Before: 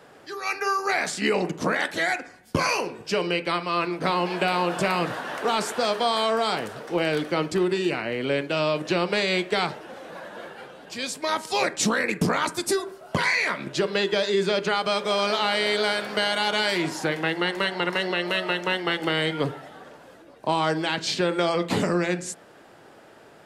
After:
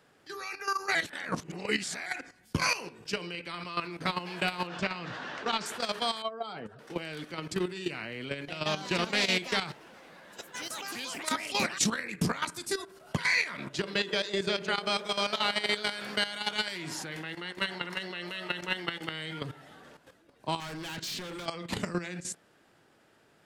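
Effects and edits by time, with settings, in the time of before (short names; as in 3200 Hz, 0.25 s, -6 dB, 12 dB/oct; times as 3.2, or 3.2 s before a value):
0.95–2.06 reverse
4.67–5.66 LPF 6100 Hz 24 dB/oct
6.22–6.79 spectral contrast raised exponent 1.8
8.29–12.45 echoes that change speed 0.192 s, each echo +4 st, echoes 2, each echo -6 dB
13.43–15.76 band-limited delay 0.154 s, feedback 65%, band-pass 490 Hz, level -7 dB
16.42–17.58 fade out logarithmic
20.6–21.46 hard clip -29 dBFS
whole clip: dynamic EQ 350 Hz, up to -3 dB, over -32 dBFS, Q 0.83; level quantiser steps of 12 dB; bell 630 Hz -7 dB 2 oct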